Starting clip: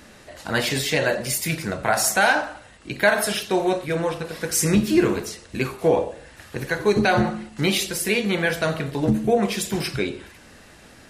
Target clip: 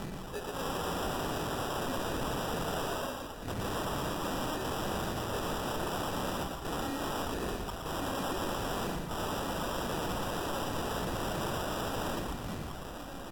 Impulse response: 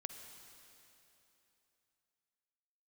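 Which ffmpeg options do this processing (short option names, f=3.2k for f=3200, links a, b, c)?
-filter_complex "[0:a]acompressor=threshold=-24dB:ratio=12,aeval=exprs='(mod(25.1*val(0)+1,2)-1)/25.1':c=same,aecho=1:1:1178|2356:0.0891|0.0178,asplit=2[a][b];[b]asetrate=37084,aresample=44100,atempo=1.18921,volume=-1dB[c];[a][c]amix=inputs=2:normalize=0,aphaser=in_gain=1:out_gain=1:delay=3.1:decay=0.75:speed=0.96:type=sinusoidal,tremolo=f=210:d=0.621,acrusher=samples=17:mix=1:aa=0.000001,aeval=exprs='0.0299*(abs(mod(val(0)/0.0299+3,4)-2)-1)':c=same,asetrate=36735,aresample=44100,asplit=2[d][e];[1:a]atrim=start_sample=2205,asetrate=57330,aresample=44100,adelay=117[f];[e][f]afir=irnorm=-1:irlink=0,volume=1dB[g];[d][g]amix=inputs=2:normalize=0"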